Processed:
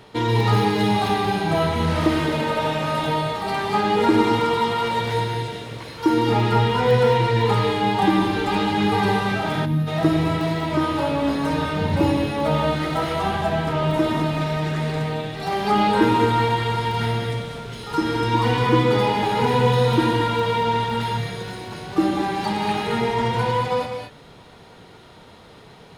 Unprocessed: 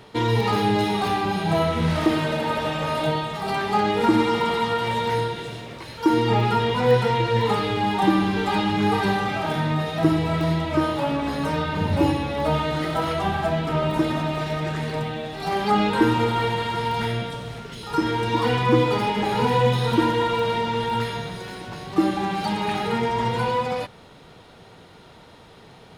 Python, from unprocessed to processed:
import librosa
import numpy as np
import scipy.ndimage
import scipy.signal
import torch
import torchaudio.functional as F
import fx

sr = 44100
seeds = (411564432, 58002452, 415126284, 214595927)

y = fx.rev_gated(x, sr, seeds[0], gate_ms=250, shape='rising', drr_db=3.5)
y = fx.spec_box(y, sr, start_s=9.65, length_s=0.23, low_hz=340.0, high_hz=10000.0, gain_db=-11)